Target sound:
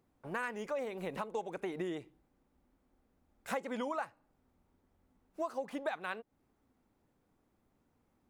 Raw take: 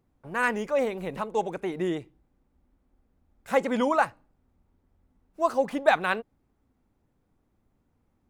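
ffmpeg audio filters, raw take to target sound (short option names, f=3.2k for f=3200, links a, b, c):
-af "lowshelf=f=140:g=-10,acompressor=threshold=-35dB:ratio=6"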